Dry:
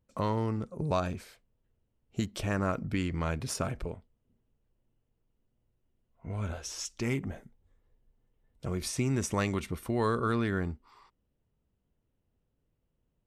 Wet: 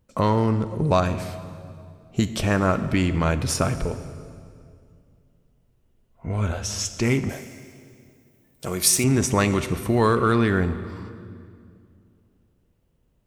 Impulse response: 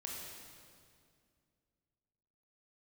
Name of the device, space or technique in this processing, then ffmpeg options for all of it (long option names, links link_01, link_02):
saturated reverb return: -filter_complex "[0:a]asplit=2[link_01][link_02];[1:a]atrim=start_sample=2205[link_03];[link_02][link_03]afir=irnorm=-1:irlink=0,asoftclip=type=tanh:threshold=-27.5dB,volume=-5dB[link_04];[link_01][link_04]amix=inputs=2:normalize=0,asettb=1/sr,asplit=3[link_05][link_06][link_07];[link_05]atrim=end=7.294[link_08];[link_06]atrim=start=7.29:end=9.04,asetpts=PTS-STARTPTS,afade=type=in:duration=0.004:curve=qsin,afade=type=out:start_time=1.746:duration=0.004:curve=qsin,aemphasis=mode=production:type=bsi[link_09];[link_07]atrim=start=9.036[link_10];[link_08][link_09]acrossfade=duration=0.004:curve1=hsin:curve2=qsin[link_11];[link_11][link_10]acrossfade=duration=0.004:curve1=qsin:curve2=hsin,volume=8dB"